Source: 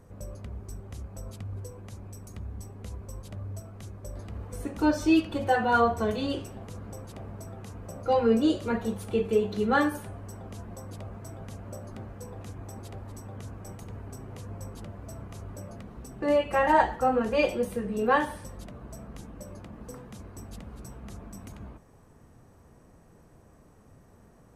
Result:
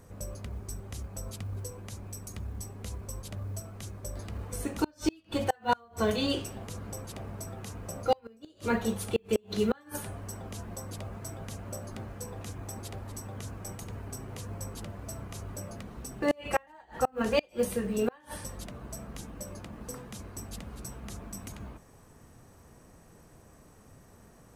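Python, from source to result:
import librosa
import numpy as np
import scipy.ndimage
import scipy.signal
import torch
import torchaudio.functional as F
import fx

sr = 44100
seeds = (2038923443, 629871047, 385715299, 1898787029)

y = fx.gate_flip(x, sr, shuts_db=-15.0, range_db=-34)
y = fx.quant_float(y, sr, bits=6)
y = fx.high_shelf(y, sr, hz=2000.0, db=8.0)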